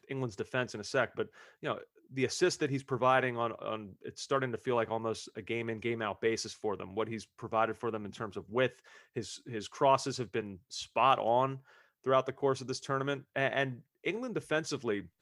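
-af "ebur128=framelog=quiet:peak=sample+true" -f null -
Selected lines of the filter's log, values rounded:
Integrated loudness:
  I:         -33.6 LUFS
  Threshold: -43.8 LUFS
Loudness range:
  LRA:         4.0 LU
  Threshold: -53.6 LUFS
  LRA low:   -35.7 LUFS
  LRA high:  -31.7 LUFS
Sample peak:
  Peak:      -12.6 dBFS
True peak:
  Peak:      -12.6 dBFS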